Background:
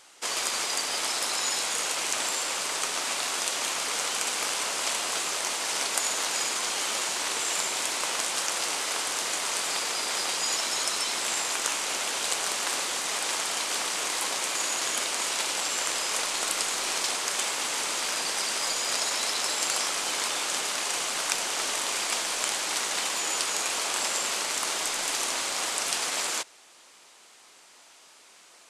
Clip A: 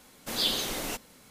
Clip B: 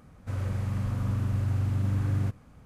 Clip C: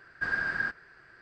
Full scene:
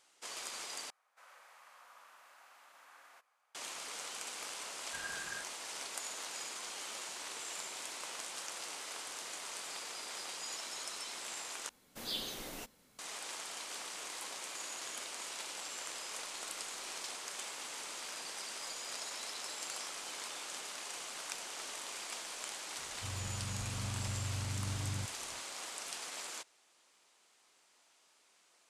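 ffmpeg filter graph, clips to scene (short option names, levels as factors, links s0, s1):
-filter_complex "[2:a]asplit=2[s0][s1];[0:a]volume=0.178[s2];[s0]highpass=f=780:w=0.5412,highpass=f=780:w=1.3066[s3];[s2]asplit=3[s4][s5][s6];[s4]atrim=end=0.904[s7];[s3]atrim=end=2.65,asetpts=PTS-STARTPTS,volume=0.282[s8];[s5]atrim=start=3.546:end=11.694[s9];[1:a]atrim=end=1.3,asetpts=PTS-STARTPTS,volume=0.266[s10];[s6]atrim=start=12.986[s11];[3:a]atrim=end=1.21,asetpts=PTS-STARTPTS,volume=0.178,afade=t=in:d=0.004:c=hsin,afade=t=out:st=1.206:d=0.004:c=hsin,adelay=4720[s12];[s1]atrim=end=2.65,asetpts=PTS-STARTPTS,volume=0.251,afade=t=in:d=0.004:c=hsin,afade=t=out:st=2.646:d=0.004:c=hsin,adelay=22750[s13];[s7][s8]acrossfade=d=0.004:c1=hsin:c2=hsin[s14];[s14][s9]acrossfade=d=0.004:c1=hsin:c2=hsin[s15];[s15][s10]acrossfade=d=0.004:c1=hsin:c2=hsin[s16];[s16][s11]acrossfade=d=0.004:c1=hsin:c2=hsin[s17];[s17][s12][s13]amix=inputs=3:normalize=0"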